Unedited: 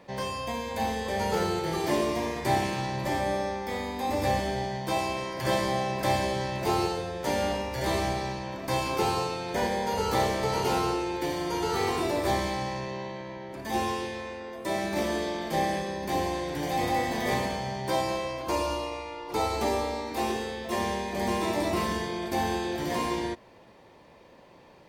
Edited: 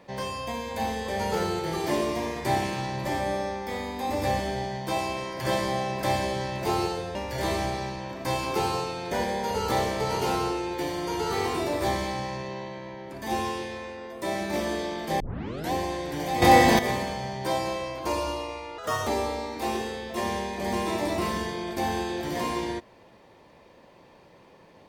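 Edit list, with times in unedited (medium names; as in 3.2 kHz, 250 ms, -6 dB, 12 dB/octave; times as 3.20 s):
7.15–7.58 s: delete
15.63 s: tape start 0.52 s
16.85–17.22 s: gain +11.5 dB
19.21–19.62 s: speed 141%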